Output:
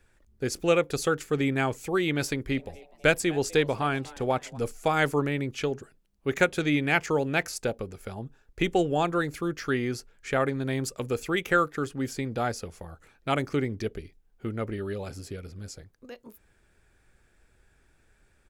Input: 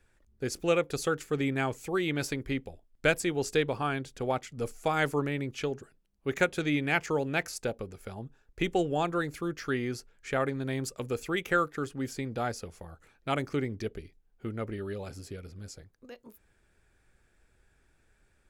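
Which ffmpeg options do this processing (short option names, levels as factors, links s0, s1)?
-filter_complex "[0:a]asplit=3[s0][s1][s2];[s0]afade=t=out:st=2.53:d=0.02[s3];[s1]asplit=4[s4][s5][s6][s7];[s5]adelay=250,afreqshift=150,volume=0.0794[s8];[s6]adelay=500,afreqshift=300,volume=0.0343[s9];[s7]adelay=750,afreqshift=450,volume=0.0146[s10];[s4][s8][s9][s10]amix=inputs=4:normalize=0,afade=t=in:st=2.53:d=0.02,afade=t=out:st=4.57:d=0.02[s11];[s2]afade=t=in:st=4.57:d=0.02[s12];[s3][s11][s12]amix=inputs=3:normalize=0,volume=1.5"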